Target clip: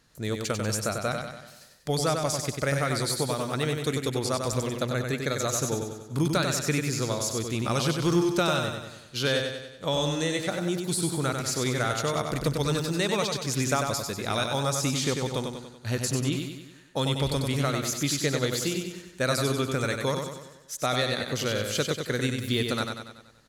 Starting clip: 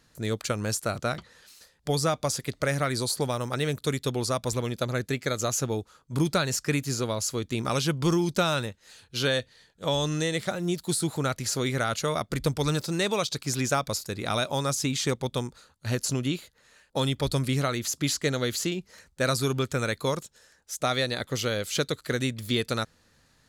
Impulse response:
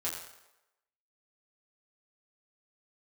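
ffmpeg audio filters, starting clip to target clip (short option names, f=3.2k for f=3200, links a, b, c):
-af "aecho=1:1:95|190|285|380|475|570|665:0.562|0.292|0.152|0.0791|0.0411|0.0214|0.0111,volume=-1dB"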